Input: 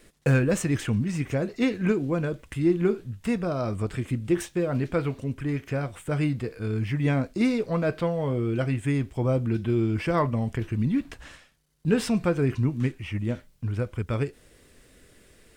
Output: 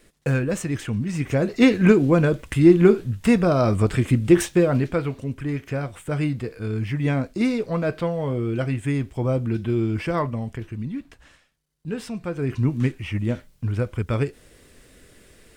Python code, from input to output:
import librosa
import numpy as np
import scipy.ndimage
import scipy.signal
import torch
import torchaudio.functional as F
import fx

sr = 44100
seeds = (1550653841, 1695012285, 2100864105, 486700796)

y = fx.gain(x, sr, db=fx.line((0.91, -1.0), (1.65, 9.0), (4.57, 9.0), (5.01, 1.5), (9.97, 1.5), (11.09, -7.0), (12.21, -7.0), (12.68, 4.0)))